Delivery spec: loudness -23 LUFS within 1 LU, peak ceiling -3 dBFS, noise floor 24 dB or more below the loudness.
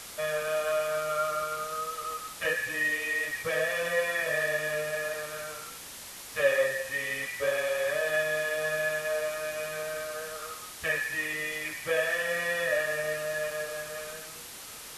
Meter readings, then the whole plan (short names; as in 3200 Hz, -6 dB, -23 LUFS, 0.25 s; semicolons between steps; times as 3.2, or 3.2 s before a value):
noise floor -44 dBFS; noise floor target -54 dBFS; loudness -30.0 LUFS; peak -12.5 dBFS; loudness target -23.0 LUFS
-> noise print and reduce 10 dB; gain +7 dB